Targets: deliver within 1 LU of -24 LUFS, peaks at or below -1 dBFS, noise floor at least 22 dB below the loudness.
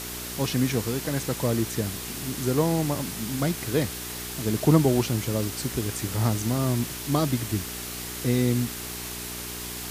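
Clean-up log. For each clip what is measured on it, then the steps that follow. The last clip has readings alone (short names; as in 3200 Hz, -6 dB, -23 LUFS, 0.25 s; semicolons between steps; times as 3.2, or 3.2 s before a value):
hum 60 Hz; harmonics up to 420 Hz; hum level -40 dBFS; noise floor -35 dBFS; noise floor target -49 dBFS; loudness -26.5 LUFS; peak -8.5 dBFS; loudness target -24.0 LUFS
-> de-hum 60 Hz, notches 7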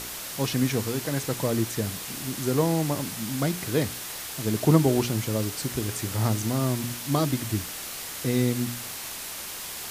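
hum none; noise floor -37 dBFS; noise floor target -49 dBFS
-> noise print and reduce 12 dB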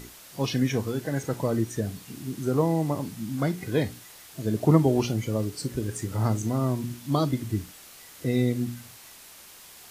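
noise floor -48 dBFS; noise floor target -50 dBFS
-> noise print and reduce 6 dB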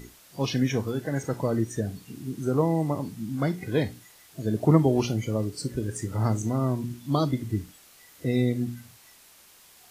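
noise floor -54 dBFS; loudness -27.5 LUFS; peak -8.5 dBFS; loudness target -24.0 LUFS
-> gain +3.5 dB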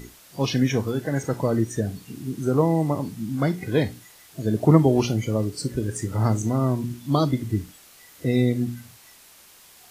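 loudness -24.0 LUFS; peak -5.0 dBFS; noise floor -51 dBFS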